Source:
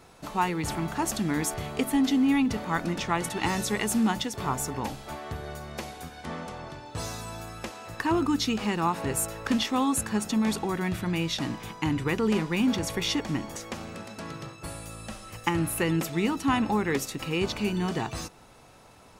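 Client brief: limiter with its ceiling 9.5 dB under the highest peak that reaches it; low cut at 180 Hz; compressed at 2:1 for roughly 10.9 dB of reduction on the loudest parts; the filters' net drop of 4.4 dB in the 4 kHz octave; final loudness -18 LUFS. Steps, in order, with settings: high-pass 180 Hz; peaking EQ 4 kHz -6 dB; compression 2:1, threshold -42 dBFS; trim +23.5 dB; peak limiter -8 dBFS

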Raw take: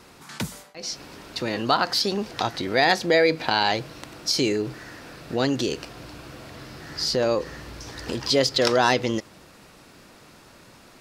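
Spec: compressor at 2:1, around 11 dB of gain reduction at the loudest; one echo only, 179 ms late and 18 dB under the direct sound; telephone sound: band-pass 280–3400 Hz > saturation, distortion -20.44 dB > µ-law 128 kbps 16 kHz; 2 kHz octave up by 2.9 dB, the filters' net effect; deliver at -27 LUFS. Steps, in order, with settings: peaking EQ 2 kHz +4 dB; compression 2:1, threshold -34 dBFS; band-pass 280–3400 Hz; delay 179 ms -18 dB; saturation -19.5 dBFS; trim +8 dB; µ-law 128 kbps 16 kHz

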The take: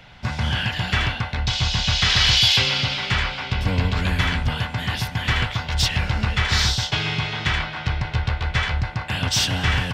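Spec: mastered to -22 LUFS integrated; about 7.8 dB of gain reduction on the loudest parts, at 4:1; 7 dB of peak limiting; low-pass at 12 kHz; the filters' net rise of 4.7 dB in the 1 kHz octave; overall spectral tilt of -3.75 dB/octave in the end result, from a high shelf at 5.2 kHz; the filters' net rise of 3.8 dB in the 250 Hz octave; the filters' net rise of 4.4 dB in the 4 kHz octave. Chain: low-pass 12 kHz; peaking EQ 250 Hz +5.5 dB; peaking EQ 1 kHz +5.5 dB; peaking EQ 4 kHz +6.5 dB; treble shelf 5.2 kHz -3 dB; compression 4:1, threshold -19 dBFS; trim +2 dB; peak limiter -13 dBFS

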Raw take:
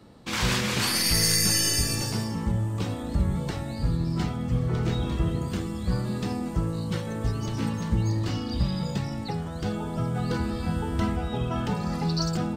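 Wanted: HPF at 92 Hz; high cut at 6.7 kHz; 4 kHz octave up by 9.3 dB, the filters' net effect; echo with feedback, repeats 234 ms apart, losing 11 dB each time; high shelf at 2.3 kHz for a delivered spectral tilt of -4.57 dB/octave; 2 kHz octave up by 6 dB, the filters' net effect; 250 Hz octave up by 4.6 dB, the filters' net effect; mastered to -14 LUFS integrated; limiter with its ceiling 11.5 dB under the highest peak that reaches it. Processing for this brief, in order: high-pass 92 Hz; low-pass 6.7 kHz; peaking EQ 250 Hz +6.5 dB; peaking EQ 2 kHz +3 dB; treble shelf 2.3 kHz +4 dB; peaking EQ 4 kHz +8 dB; peak limiter -15.5 dBFS; feedback delay 234 ms, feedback 28%, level -11 dB; trim +11 dB

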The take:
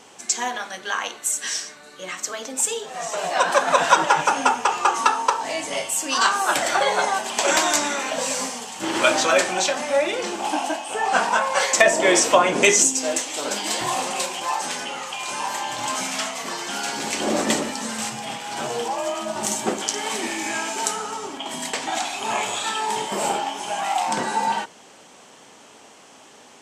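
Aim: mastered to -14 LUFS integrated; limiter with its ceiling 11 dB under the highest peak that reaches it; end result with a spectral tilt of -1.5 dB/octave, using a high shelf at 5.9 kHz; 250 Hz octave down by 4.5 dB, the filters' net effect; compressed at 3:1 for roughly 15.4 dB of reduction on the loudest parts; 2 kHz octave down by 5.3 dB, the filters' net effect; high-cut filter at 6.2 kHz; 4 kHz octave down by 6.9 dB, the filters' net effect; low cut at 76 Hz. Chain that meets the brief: high-pass 76 Hz; low-pass 6.2 kHz; peaking EQ 250 Hz -6 dB; peaking EQ 2 kHz -5.5 dB; peaking EQ 4 kHz -9 dB; treble shelf 5.9 kHz +6 dB; compression 3:1, threshold -35 dBFS; trim +22 dB; peak limiter -3.5 dBFS

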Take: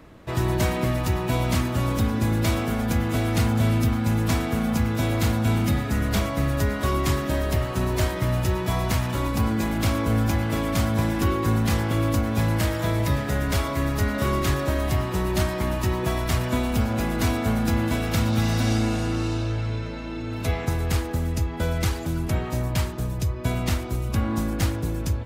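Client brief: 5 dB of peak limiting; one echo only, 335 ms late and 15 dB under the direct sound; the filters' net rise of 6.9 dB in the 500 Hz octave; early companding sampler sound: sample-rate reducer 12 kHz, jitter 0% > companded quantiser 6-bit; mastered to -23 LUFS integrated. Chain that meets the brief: peaking EQ 500 Hz +9 dB; peak limiter -13.5 dBFS; delay 335 ms -15 dB; sample-rate reducer 12 kHz, jitter 0%; companded quantiser 6-bit; trim +0.5 dB

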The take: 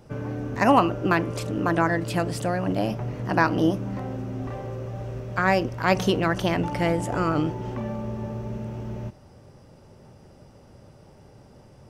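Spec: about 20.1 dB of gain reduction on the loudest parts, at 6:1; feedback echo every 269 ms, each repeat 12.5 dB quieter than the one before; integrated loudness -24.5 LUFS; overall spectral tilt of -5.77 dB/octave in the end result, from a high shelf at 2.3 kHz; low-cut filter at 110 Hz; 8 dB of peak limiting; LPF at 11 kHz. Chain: high-pass 110 Hz; low-pass 11 kHz; treble shelf 2.3 kHz -8 dB; compression 6:1, threshold -36 dBFS; peak limiter -30 dBFS; feedback delay 269 ms, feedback 24%, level -12.5 dB; trim +16.5 dB

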